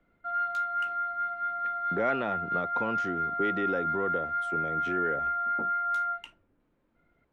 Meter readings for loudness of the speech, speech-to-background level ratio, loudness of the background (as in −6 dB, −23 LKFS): −35.0 LKFS, −5.0 dB, −30.0 LKFS